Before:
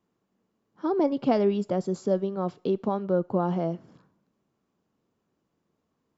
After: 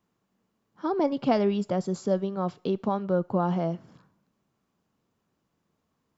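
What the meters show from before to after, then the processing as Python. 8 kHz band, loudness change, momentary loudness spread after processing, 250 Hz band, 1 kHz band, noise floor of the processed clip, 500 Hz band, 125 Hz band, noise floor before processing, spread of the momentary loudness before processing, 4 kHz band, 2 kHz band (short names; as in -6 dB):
n/a, -0.5 dB, 6 LU, -0.5 dB, +1.0 dB, -77 dBFS, -1.5 dB, +1.0 dB, -78 dBFS, 7 LU, +3.0 dB, +2.5 dB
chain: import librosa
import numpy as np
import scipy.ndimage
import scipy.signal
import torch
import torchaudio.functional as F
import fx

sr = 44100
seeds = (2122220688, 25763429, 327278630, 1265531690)

y = fx.peak_eq(x, sr, hz=370.0, db=-5.5, octaves=1.6)
y = y * 10.0 ** (3.0 / 20.0)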